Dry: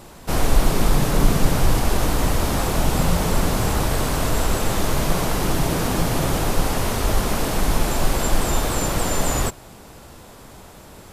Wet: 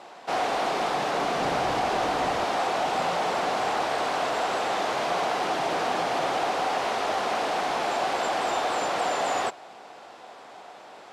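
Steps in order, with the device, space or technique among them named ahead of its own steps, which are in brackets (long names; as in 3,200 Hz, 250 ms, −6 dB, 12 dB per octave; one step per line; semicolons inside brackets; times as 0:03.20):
intercom (band-pass filter 490–4,000 Hz; parametric band 740 Hz +8.5 dB 0.26 octaves; soft clipping −16.5 dBFS, distortion −22 dB)
0:01.38–0:02.44: low-shelf EQ 190 Hz +10.5 dB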